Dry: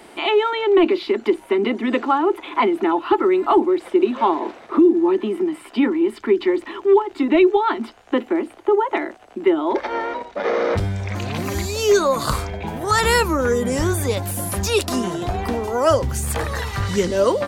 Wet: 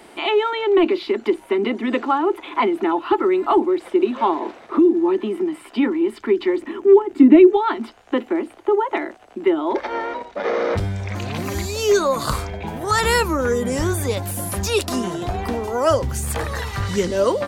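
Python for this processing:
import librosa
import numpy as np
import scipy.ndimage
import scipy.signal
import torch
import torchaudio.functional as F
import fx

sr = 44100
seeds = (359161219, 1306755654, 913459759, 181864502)

y = fx.graphic_eq_10(x, sr, hz=(250, 1000, 4000), db=(12, -4, -8), at=(6.61, 7.53))
y = F.gain(torch.from_numpy(y), -1.0).numpy()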